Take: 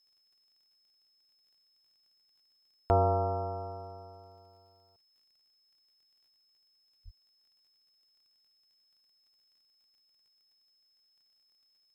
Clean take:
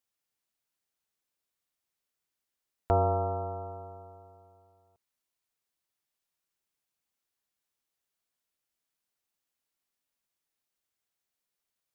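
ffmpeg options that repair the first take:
-filter_complex "[0:a]adeclick=t=4,bandreject=f=5.2k:w=30,asplit=3[a][b][c];[a]afade=t=out:st=7.04:d=0.02[d];[b]highpass=f=140:w=0.5412,highpass=f=140:w=1.3066,afade=t=in:st=7.04:d=0.02,afade=t=out:st=7.16:d=0.02[e];[c]afade=t=in:st=7.16:d=0.02[f];[d][e][f]amix=inputs=3:normalize=0"

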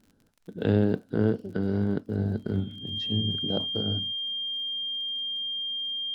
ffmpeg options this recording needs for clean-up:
-af "adeclick=t=4,bandreject=f=3.2k:w=30"

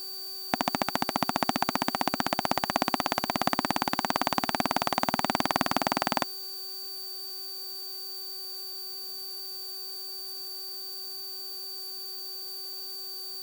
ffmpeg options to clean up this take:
-af "bandreject=f=380.4:t=h:w=4,bandreject=f=760.8:t=h:w=4,bandreject=f=1.1412k:t=h:w=4,bandreject=f=1.5216k:t=h:w=4,bandreject=f=4.6k:w=30,afftdn=nr=30:nf=-38"

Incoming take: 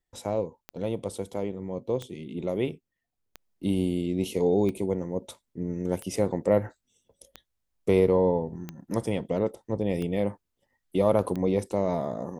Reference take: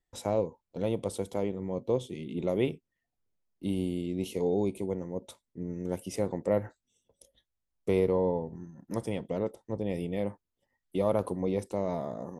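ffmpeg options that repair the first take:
-af "adeclick=t=4,asetnsamples=n=441:p=0,asendcmd='3.35 volume volume -5dB',volume=0dB"

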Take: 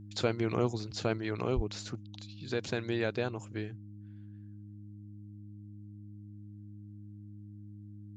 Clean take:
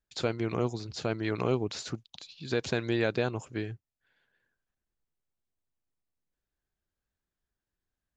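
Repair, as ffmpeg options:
-filter_complex "[0:a]bandreject=f=103.2:t=h:w=4,bandreject=f=206.4:t=h:w=4,bandreject=f=309.6:t=h:w=4,asplit=3[a][b][c];[a]afade=t=out:st=1.55:d=0.02[d];[b]highpass=f=140:w=0.5412,highpass=f=140:w=1.3066,afade=t=in:st=1.55:d=0.02,afade=t=out:st=1.67:d=0.02[e];[c]afade=t=in:st=1.67:d=0.02[f];[d][e][f]amix=inputs=3:normalize=0,asetnsamples=n=441:p=0,asendcmd='1.18 volume volume 4dB',volume=0dB"

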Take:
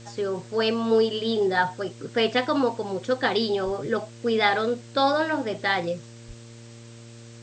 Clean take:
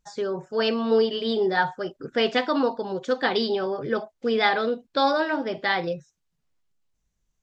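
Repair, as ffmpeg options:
-filter_complex "[0:a]bandreject=f=116.1:t=h:w=4,bandreject=f=232.2:t=h:w=4,bandreject=f=348.3:t=h:w=4,bandreject=f=464.4:t=h:w=4,bandreject=f=580.5:t=h:w=4,asplit=3[a][b][c];[a]afade=t=out:st=3.65:d=0.02[d];[b]highpass=f=140:w=0.5412,highpass=f=140:w=1.3066,afade=t=in:st=3.65:d=0.02,afade=t=out:st=3.77:d=0.02[e];[c]afade=t=in:st=3.77:d=0.02[f];[d][e][f]amix=inputs=3:normalize=0,asplit=3[g][h][i];[g]afade=t=out:st=6.27:d=0.02[j];[h]highpass=f=140:w=0.5412,highpass=f=140:w=1.3066,afade=t=in:st=6.27:d=0.02,afade=t=out:st=6.39:d=0.02[k];[i]afade=t=in:st=6.39:d=0.02[l];[j][k][l]amix=inputs=3:normalize=0,afwtdn=0.0035"

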